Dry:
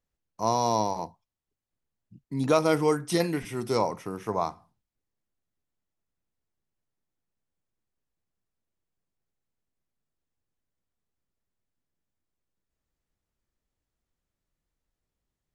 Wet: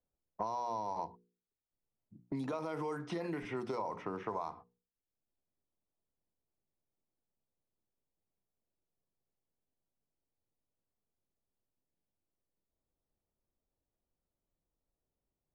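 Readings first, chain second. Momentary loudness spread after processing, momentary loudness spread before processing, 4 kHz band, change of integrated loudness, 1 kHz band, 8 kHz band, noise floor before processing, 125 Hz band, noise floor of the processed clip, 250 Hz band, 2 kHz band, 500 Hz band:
7 LU, 11 LU, −18.0 dB, −12.5 dB, −10.0 dB, −23.0 dB, below −85 dBFS, −13.5 dB, below −85 dBFS, −12.0 dB, −11.0 dB, −13.5 dB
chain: one scale factor per block 7 bits
noise gate −44 dBFS, range −19 dB
brickwall limiter −20 dBFS, peak gain reduction 10.5 dB
low-pass that shuts in the quiet parts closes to 720 Hz, open at −26 dBFS
dynamic equaliser 980 Hz, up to +5 dB, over −48 dBFS, Q 5
mains-hum notches 60/120/180/240/300/360/420/480 Hz
downward compressor, threshold −33 dBFS, peak gain reduction 8.5 dB
low-pass filter 1,500 Hz 6 dB per octave
low-shelf EQ 310 Hz −9.5 dB
multiband upward and downward compressor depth 70%
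level +2 dB

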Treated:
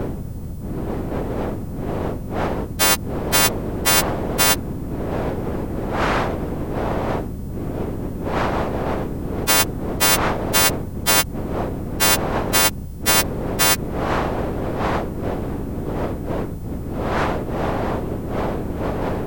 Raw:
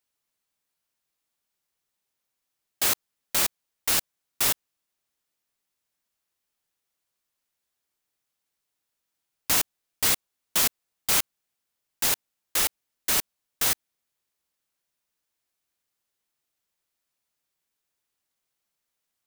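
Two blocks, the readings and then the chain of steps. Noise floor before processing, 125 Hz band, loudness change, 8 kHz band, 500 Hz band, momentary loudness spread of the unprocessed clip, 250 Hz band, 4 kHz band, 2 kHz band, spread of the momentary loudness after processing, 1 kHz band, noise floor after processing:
−83 dBFS, +25.5 dB, +4.0 dB, +7.0 dB, +21.5 dB, 8 LU, +24.0 dB, +9.5 dB, +12.5 dB, 11 LU, +17.0 dB, −29 dBFS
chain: every partial snapped to a pitch grid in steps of 2 semitones
wind on the microphone 98 Hz −18 dBFS
every bin compressed towards the loudest bin 10 to 1
level −5.5 dB

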